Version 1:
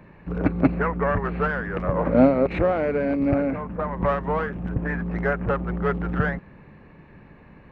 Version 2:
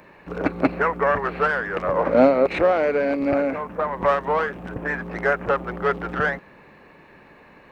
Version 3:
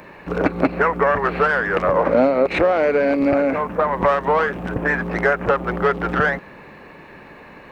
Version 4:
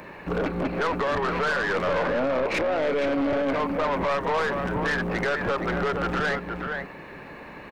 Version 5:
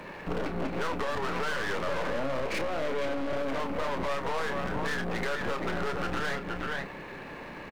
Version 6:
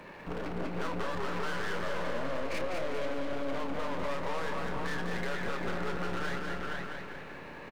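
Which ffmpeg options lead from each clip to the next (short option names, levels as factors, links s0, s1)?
-af "bass=f=250:g=-15,treble=f=4000:g=10,volume=1.68"
-af "acompressor=threshold=0.0794:ratio=3,volume=2.37"
-af "alimiter=limit=0.251:level=0:latency=1:release=12,aecho=1:1:470:0.376,aeval=exprs='(tanh(11.2*val(0)+0.2)-tanh(0.2))/11.2':c=same"
-filter_complex "[0:a]acompressor=threshold=0.0447:ratio=6,aeval=exprs='clip(val(0),-1,0.00794)':c=same,asplit=2[s0][s1];[s1]adelay=30,volume=0.355[s2];[s0][s2]amix=inputs=2:normalize=0"
-af "aecho=1:1:199|398|597|796|995|1194|1393:0.596|0.31|0.161|0.0838|0.0436|0.0226|0.0118,volume=0.531"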